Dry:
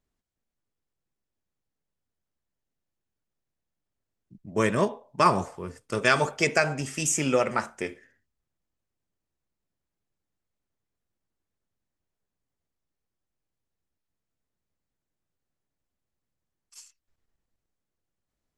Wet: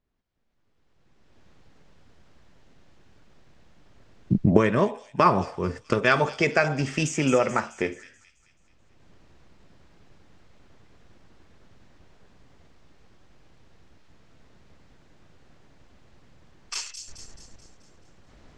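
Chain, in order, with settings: recorder AGC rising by 21 dB/s; air absorption 150 m; on a send: thin delay 0.216 s, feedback 51%, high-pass 5300 Hz, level -5 dB; on the sum: gain +2 dB

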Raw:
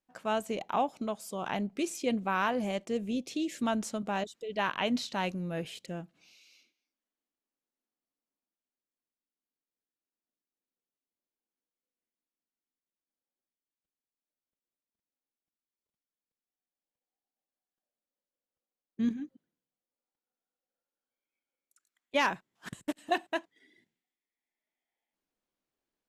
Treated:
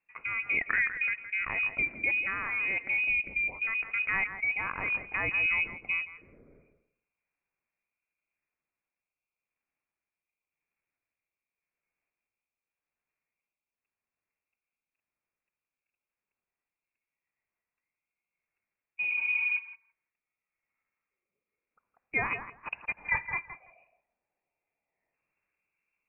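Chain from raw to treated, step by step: spectral repair 19.05–19.56, 220–1800 Hz before; in parallel at +1.5 dB: negative-ratio compressor -35 dBFS, ratio -0.5; on the sum: rotary speaker horn 0.9 Hz; thinning echo 0.166 s, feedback 17%, high-pass 710 Hz, level -8.5 dB; inverted band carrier 2700 Hz

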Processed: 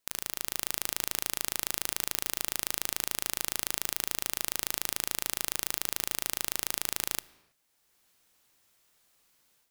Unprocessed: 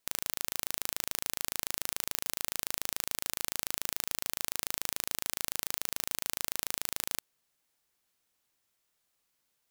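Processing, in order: AGC gain up to 11 dB; on a send: reverb, pre-delay 22 ms, DRR 19 dB; on the sum: gain -1 dB

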